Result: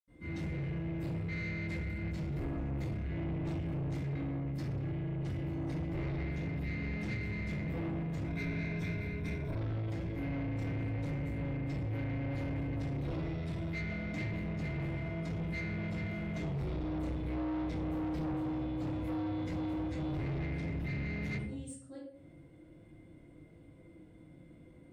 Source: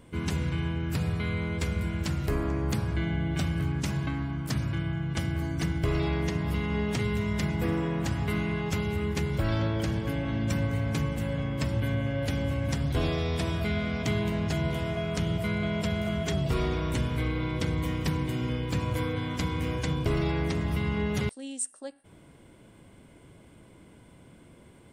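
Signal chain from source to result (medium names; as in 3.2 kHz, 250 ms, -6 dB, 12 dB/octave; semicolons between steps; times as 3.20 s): rattle on loud lows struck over -27 dBFS, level -33 dBFS; small resonant body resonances 320/500/2100/3500 Hz, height 9 dB; reverberation RT60 0.55 s, pre-delay 77 ms; saturation -32 dBFS, distortion -9 dB; 8.27–9.58 s: rippled EQ curve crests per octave 1.6, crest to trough 9 dB; trim -1 dB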